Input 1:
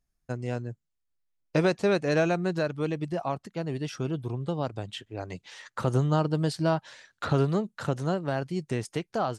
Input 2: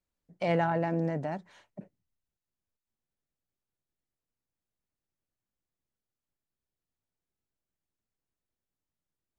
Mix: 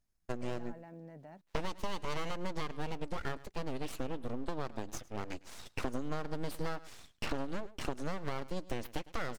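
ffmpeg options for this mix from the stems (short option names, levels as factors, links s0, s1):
-filter_complex "[0:a]aeval=exprs='abs(val(0))':c=same,volume=0.891,asplit=2[s0][s1];[s1]volume=0.0794[s2];[1:a]alimiter=level_in=1.33:limit=0.0631:level=0:latency=1:release=382,volume=0.75,aeval=exprs='val(0)*gte(abs(val(0)),0.00168)':c=same,volume=0.168[s3];[s2]aecho=0:1:106:1[s4];[s0][s3][s4]amix=inputs=3:normalize=0,acompressor=threshold=0.0316:ratio=10"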